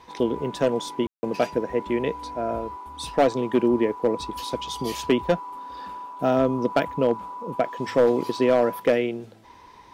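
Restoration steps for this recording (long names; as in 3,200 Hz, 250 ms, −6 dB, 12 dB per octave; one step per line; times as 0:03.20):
clipped peaks rebuilt −11.5 dBFS
ambience match 0:01.07–0:01.23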